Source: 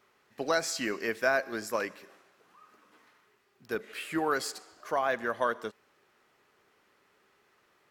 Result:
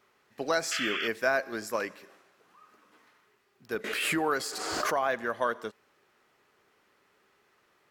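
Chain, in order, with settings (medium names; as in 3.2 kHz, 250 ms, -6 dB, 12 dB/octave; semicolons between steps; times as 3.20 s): 0.71–1.08 s: painted sound noise 1.2–3.5 kHz -33 dBFS; 3.84–5.22 s: swell ahead of each attack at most 26 dB/s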